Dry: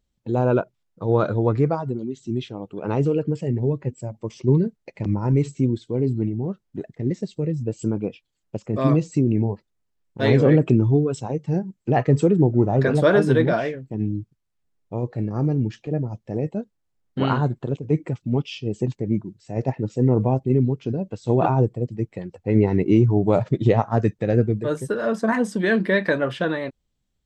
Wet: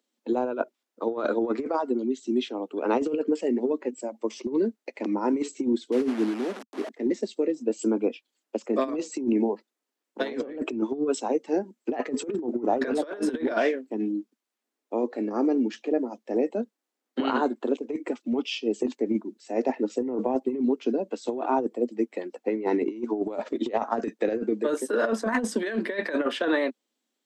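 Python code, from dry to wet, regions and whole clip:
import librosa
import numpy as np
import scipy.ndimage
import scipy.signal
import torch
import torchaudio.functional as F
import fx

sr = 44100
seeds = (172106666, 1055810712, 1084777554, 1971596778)

y = fx.chain(x, sr, fx.delta_mod(bps=64000, step_db=-28.0),
    fx.lowpass(hz=1400.0, slope=6),
    fx.band_widen(depth_pct=40), at=(5.92, 6.89))
y = scipy.signal.sosfilt(scipy.signal.butter(12, 230.0, 'highpass', fs=sr, output='sos'), y)
y = fx.over_compress(y, sr, threshold_db=-24.0, ratio=-0.5)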